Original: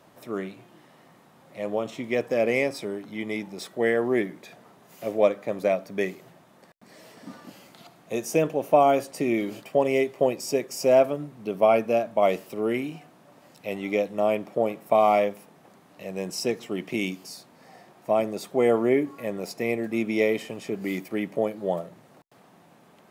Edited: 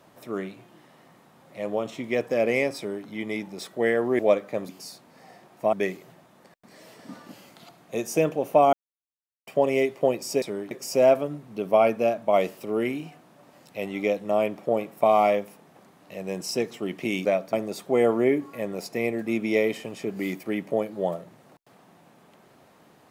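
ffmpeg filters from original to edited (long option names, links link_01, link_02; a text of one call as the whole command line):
ffmpeg -i in.wav -filter_complex "[0:a]asplit=10[link_01][link_02][link_03][link_04][link_05][link_06][link_07][link_08][link_09][link_10];[link_01]atrim=end=4.192[link_11];[link_02]atrim=start=5.128:end=5.632[link_12];[link_03]atrim=start=17.138:end=18.182[link_13];[link_04]atrim=start=5.908:end=8.91,asetpts=PTS-STARTPTS,afade=type=out:start_time=2.998:duration=0.004:curve=hsin[link_14];[link_05]atrim=start=8.91:end=9.65,asetpts=PTS-STARTPTS,volume=0[link_15];[link_06]atrim=start=9.65:end=10.602,asetpts=PTS-STARTPTS,afade=type=in:duration=0.004:curve=hsin[link_16];[link_07]atrim=start=2.768:end=3.062[link_17];[link_08]atrim=start=10.598:end=17.142[link_18];[link_09]atrim=start=5.628:end=5.912[link_19];[link_10]atrim=start=18.178[link_20];[link_11][link_12]acrossfade=duration=0.004:curve1=hsin:curve2=hsin[link_21];[link_21][link_13]acrossfade=duration=0.004:curve1=hsin:curve2=hsin[link_22];[link_14][link_15][link_16]concat=n=3:v=0:a=1[link_23];[link_22][link_23]acrossfade=duration=0.004:curve1=hsin:curve2=hsin[link_24];[link_24][link_17]acrossfade=duration=0.004:curve1=hsin:curve2=hsin[link_25];[link_25][link_18]acrossfade=duration=0.004:curve1=hsin:curve2=hsin[link_26];[link_26][link_19]acrossfade=duration=0.004:curve1=hsin:curve2=hsin[link_27];[link_27][link_20]acrossfade=duration=0.004:curve1=hsin:curve2=hsin" out.wav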